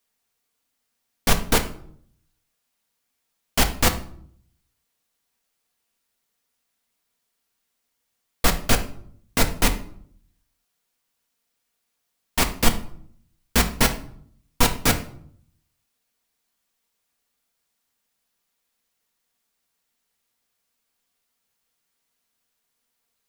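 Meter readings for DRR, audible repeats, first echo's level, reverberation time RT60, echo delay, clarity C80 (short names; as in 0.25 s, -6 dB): 4.0 dB, none, none, 0.60 s, none, 16.5 dB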